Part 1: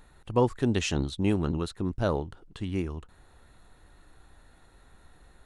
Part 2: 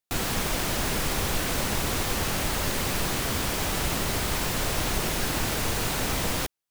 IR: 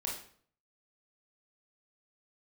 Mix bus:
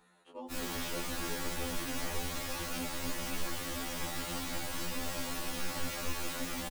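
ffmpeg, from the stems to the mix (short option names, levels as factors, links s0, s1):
-filter_complex "[0:a]highpass=f=270:w=0.5412,highpass=f=270:w=1.3066,acompressor=threshold=0.00126:ratio=1.5,aeval=exprs='val(0)+0.000631*(sin(2*PI*60*n/s)+sin(2*PI*2*60*n/s)/2+sin(2*PI*3*60*n/s)/3+sin(2*PI*4*60*n/s)/4+sin(2*PI*5*60*n/s)/5)':c=same,volume=1.06[s0];[1:a]aecho=1:1:3.6:0.55,adelay=400,volume=0.501[s1];[s0][s1]amix=inputs=2:normalize=0,flanger=delay=15.5:depth=3.6:speed=1.8,afftfilt=real='re*2*eq(mod(b,4),0)':imag='im*2*eq(mod(b,4),0)':win_size=2048:overlap=0.75"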